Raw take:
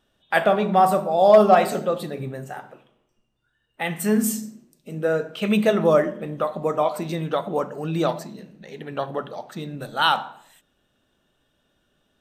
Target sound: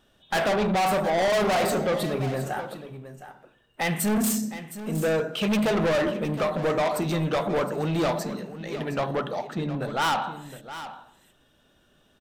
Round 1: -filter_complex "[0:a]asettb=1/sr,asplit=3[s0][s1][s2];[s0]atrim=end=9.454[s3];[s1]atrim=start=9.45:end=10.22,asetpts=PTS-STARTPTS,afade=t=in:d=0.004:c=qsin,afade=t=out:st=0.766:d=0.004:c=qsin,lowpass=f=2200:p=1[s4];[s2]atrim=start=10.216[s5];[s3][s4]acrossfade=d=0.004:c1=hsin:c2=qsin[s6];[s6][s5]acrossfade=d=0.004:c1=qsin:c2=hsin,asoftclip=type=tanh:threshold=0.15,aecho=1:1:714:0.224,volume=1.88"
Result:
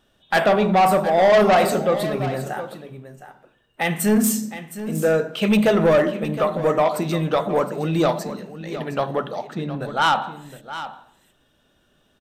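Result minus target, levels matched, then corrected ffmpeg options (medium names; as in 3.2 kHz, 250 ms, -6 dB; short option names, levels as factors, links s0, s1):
saturation: distortion -6 dB
-filter_complex "[0:a]asettb=1/sr,asplit=3[s0][s1][s2];[s0]atrim=end=9.454[s3];[s1]atrim=start=9.45:end=10.22,asetpts=PTS-STARTPTS,afade=t=in:d=0.004:c=qsin,afade=t=out:st=0.766:d=0.004:c=qsin,lowpass=f=2200:p=1[s4];[s2]atrim=start=10.216[s5];[s3][s4]acrossfade=d=0.004:c1=hsin:c2=qsin[s6];[s6][s5]acrossfade=d=0.004:c1=qsin:c2=hsin,asoftclip=type=tanh:threshold=0.0473,aecho=1:1:714:0.224,volume=1.88"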